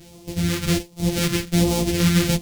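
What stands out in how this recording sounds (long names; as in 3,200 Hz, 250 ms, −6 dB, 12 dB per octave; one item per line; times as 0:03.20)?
a buzz of ramps at a fixed pitch in blocks of 256 samples
phaser sweep stages 2, 1.3 Hz, lowest notch 710–1,500 Hz
tremolo saw down 1.5 Hz, depth 35%
a shimmering, thickened sound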